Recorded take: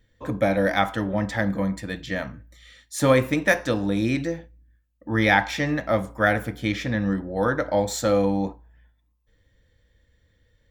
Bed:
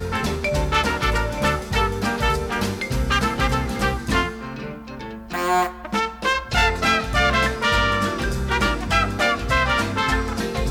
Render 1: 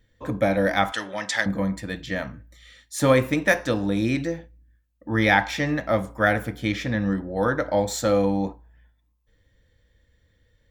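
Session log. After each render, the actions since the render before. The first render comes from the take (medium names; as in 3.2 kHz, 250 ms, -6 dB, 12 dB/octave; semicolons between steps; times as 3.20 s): 0.92–1.46 s: frequency weighting ITU-R 468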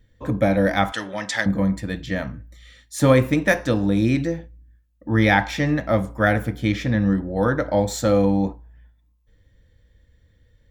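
bass shelf 310 Hz +7 dB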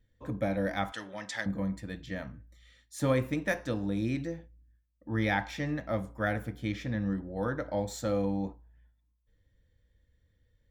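trim -12 dB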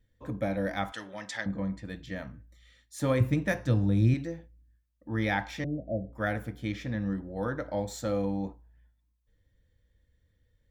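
1.37–1.85 s: low-pass 5.6 kHz; 3.20–4.14 s: peaking EQ 110 Hz +14 dB 1.3 oct; 5.64–6.13 s: steep low-pass 710 Hz 96 dB/octave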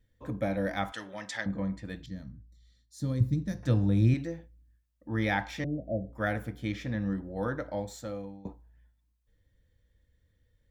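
2.06–3.63 s: FFT filter 200 Hz 0 dB, 690 Hz -18 dB, 1.9 kHz -17 dB, 2.7 kHz -21 dB, 4.2 kHz -2 dB, 10 kHz -10 dB; 7.51–8.45 s: fade out, to -21.5 dB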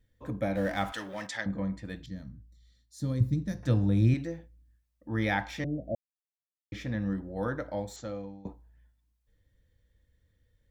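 0.55–1.27 s: companding laws mixed up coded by mu; 5.95–6.72 s: mute; 7.96–8.47 s: careless resampling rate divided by 3×, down none, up filtered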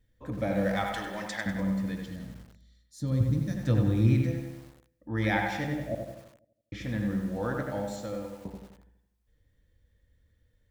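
on a send: feedback echo behind a low-pass 83 ms, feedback 50%, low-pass 2.7 kHz, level -4.5 dB; on the sum: bit-crushed delay 98 ms, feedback 55%, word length 8-bit, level -9 dB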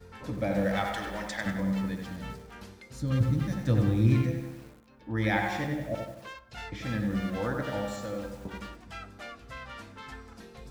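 add bed -23.5 dB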